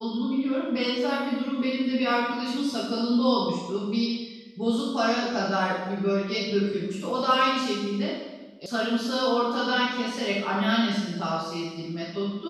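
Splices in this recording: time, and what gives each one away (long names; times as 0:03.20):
0:08.66: cut off before it has died away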